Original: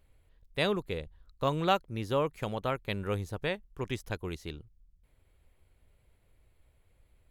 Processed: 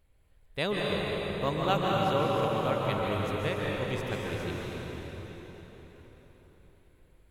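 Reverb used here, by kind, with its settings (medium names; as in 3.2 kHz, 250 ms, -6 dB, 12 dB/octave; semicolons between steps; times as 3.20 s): plate-style reverb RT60 4.7 s, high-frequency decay 0.8×, pre-delay 120 ms, DRR -4 dB; trim -2 dB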